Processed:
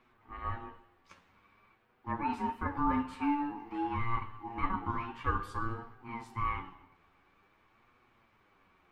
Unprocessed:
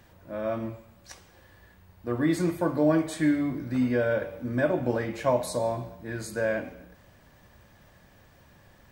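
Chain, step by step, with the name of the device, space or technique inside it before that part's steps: three-band isolator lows -22 dB, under 220 Hz, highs -17 dB, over 3100 Hz; alien voice (ring modulator 580 Hz; flange 0.5 Hz, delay 8 ms, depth 3.7 ms, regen +24%)

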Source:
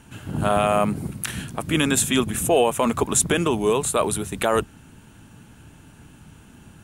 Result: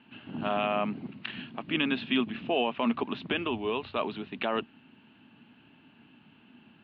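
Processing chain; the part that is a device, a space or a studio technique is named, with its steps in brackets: elliptic low-pass 4500 Hz, stop band 50 dB; kitchen radio (speaker cabinet 220–3700 Hz, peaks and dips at 240 Hz +8 dB, 490 Hz -5 dB, 1400 Hz -3 dB, 2800 Hz +8 dB); 3.32–3.98 resonant low shelf 120 Hz +8.5 dB, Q 3; gain -7.5 dB

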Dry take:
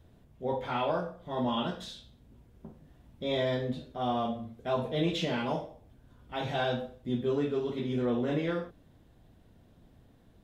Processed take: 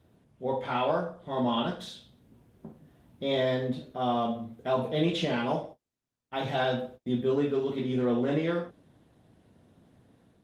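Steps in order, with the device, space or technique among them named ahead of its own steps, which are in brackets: 5.63–7.73 gate -47 dBFS, range -34 dB; video call (HPF 110 Hz 12 dB/oct; AGC gain up to 3 dB; Opus 32 kbps 48000 Hz)

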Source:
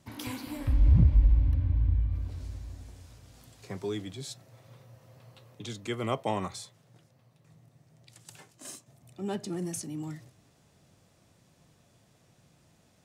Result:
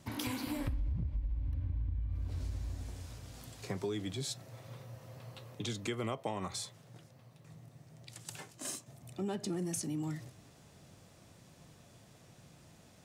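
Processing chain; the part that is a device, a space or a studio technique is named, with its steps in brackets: serial compression, peaks first (compressor 6:1, threshold -34 dBFS, peak gain reduction 17.5 dB; compressor 1.5:1, threshold -43 dBFS, peak gain reduction 4.5 dB); gain +4.5 dB

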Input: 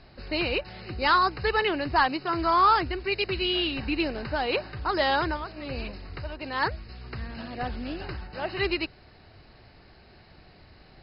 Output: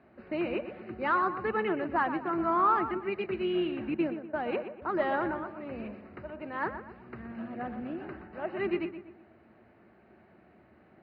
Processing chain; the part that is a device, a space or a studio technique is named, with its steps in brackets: 3.94–4.82 gate -30 dBFS, range -22 dB; darkening echo 0.122 s, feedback 41%, low-pass 2800 Hz, level -9.5 dB; sub-octave bass pedal (octaver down 1 oct, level -6 dB; speaker cabinet 85–2300 Hz, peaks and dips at 96 Hz -8 dB, 140 Hz -6 dB, 220 Hz +9 dB, 350 Hz +7 dB, 620 Hz +5 dB, 1300 Hz +3 dB); gain -7.5 dB

